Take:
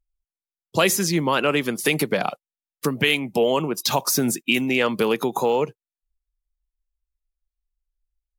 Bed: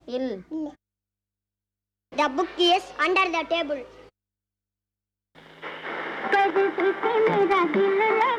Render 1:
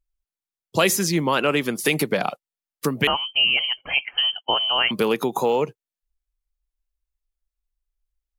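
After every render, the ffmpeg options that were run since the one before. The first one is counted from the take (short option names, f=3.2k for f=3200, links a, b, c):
-filter_complex "[0:a]asettb=1/sr,asplit=3[a][b][c];[a]atrim=end=3.074[d];[b]atrim=start=3.07:end=4.91,asetpts=PTS-STARTPTS,afade=t=in:d=0.004:c=qsin,afade=t=out:st=1.836:d=0.004:c=qsin,lowpass=f=2.8k:t=q:w=0.5098,lowpass=f=2.8k:t=q:w=0.6013,lowpass=f=2.8k:t=q:w=0.9,lowpass=f=2.8k:t=q:w=2.563,afreqshift=-3300[e];[c]atrim=start=4.906[f];[d][e]acrossfade=d=0.004:c1=hsin:c2=qsin[g];[g][f]acrossfade=d=0.004:c1=qsin:c2=hsin"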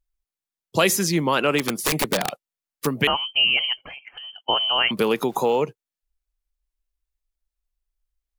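-filter_complex "[0:a]asplit=3[a][b][c];[a]afade=t=out:st=1.58:d=0.02[d];[b]aeval=exprs='(mod(5.01*val(0)+1,2)-1)/5.01':c=same,afade=t=in:st=1.58:d=0.02,afade=t=out:st=2.85:d=0.02[e];[c]afade=t=in:st=2.85:d=0.02[f];[d][e][f]amix=inputs=3:normalize=0,asettb=1/sr,asplit=3[g][h][i];[g]atrim=end=3.834[j];[h]atrim=start=3.83:end=4.4,asetpts=PTS-STARTPTS,afade=t=in:d=0.004:c=qsin,afade=t=out:st=0.566:d=0.004:c=qsin,acompressor=threshold=-35dB:ratio=16:attack=3.2:release=140:knee=1:detection=peak[k];[i]atrim=start=4.396[l];[j][k]acrossfade=d=0.004:c1=hsin:c2=qsin[m];[m][l]acrossfade=d=0.004:c1=qsin:c2=hsin,asettb=1/sr,asplit=3[n][o][p];[n]atrim=end=4.974[q];[o]atrim=start=4.97:end=5.59,asetpts=PTS-STARTPTS,afade=t=in:d=0.004:c=qsin,afade=t=out:st=0.616:d=0.004:c=qsin,aeval=exprs='val(0)*gte(abs(val(0)),0.00473)':c=same[r];[p]atrim=start=5.586[s];[q][r]acrossfade=d=0.004:c1=hsin:c2=qsin[t];[t][s]acrossfade=d=0.004:c1=qsin:c2=hsin"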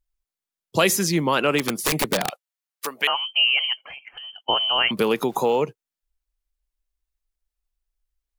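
-filter_complex "[0:a]asettb=1/sr,asplit=3[a][b][c];[a]atrim=end=2.304[d];[b]atrim=start=2.3:end=3.9,asetpts=PTS-STARTPTS,afade=t=in:d=0.004:c=qsin,afade=t=out:st=1.596:d=0.004:c=qsin,highpass=680[e];[c]atrim=start=3.896[f];[d][e]acrossfade=d=0.004:c1=hsin:c2=qsin[g];[g][f]acrossfade=d=0.004:c1=qsin:c2=hsin"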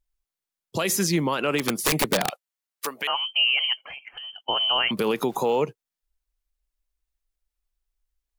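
-af "alimiter=limit=-14dB:level=0:latency=1:release=62"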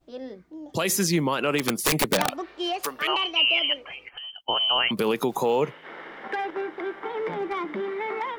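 -filter_complex "[1:a]volume=-9dB[a];[0:a][a]amix=inputs=2:normalize=0"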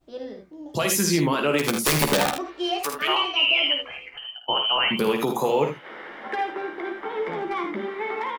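-filter_complex "[0:a]asplit=2[a][b];[b]adelay=14,volume=-7dB[c];[a][c]amix=inputs=2:normalize=0,aecho=1:1:53|79:0.398|0.398"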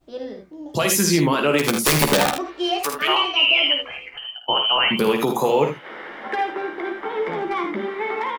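-af "volume=3.5dB"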